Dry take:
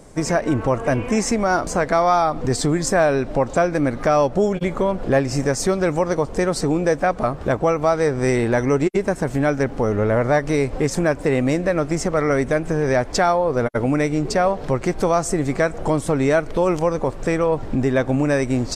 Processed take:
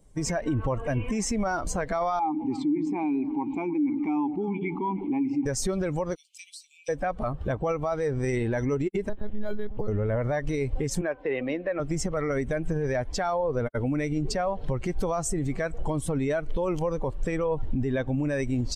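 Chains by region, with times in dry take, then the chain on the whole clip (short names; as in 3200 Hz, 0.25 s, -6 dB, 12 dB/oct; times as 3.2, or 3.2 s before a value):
2.19–5.46 vowel filter u + delay with a stepping band-pass 0.102 s, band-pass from 180 Hz, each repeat 1.4 oct, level -7.5 dB + fast leveller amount 70%
6.15–6.89 steep high-pass 2300 Hz 72 dB/oct + compressor 10:1, threshold -33 dBFS
9.09–9.88 monotone LPC vocoder at 8 kHz 210 Hz + decimation joined by straight lines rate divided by 8×
11.01–11.8 LPF 6500 Hz 24 dB/oct + three-band isolator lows -13 dB, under 290 Hz, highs -19 dB, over 4000 Hz + de-hum 255.7 Hz, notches 6
whole clip: per-bin expansion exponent 1.5; low shelf 63 Hz +9 dB; limiter -19.5 dBFS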